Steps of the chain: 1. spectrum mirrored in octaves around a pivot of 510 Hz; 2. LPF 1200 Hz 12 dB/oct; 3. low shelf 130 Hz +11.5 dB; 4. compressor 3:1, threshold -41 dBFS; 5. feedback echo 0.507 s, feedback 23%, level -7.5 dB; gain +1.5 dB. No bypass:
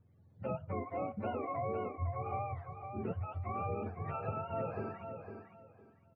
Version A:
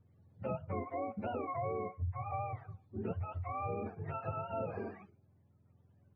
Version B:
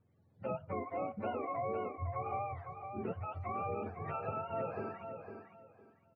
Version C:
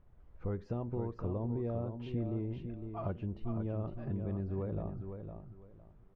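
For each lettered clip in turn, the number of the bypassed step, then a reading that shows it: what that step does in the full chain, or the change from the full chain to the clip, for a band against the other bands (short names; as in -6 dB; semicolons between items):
5, momentary loudness spread change -2 LU; 3, 125 Hz band -5.0 dB; 1, 1 kHz band -12.5 dB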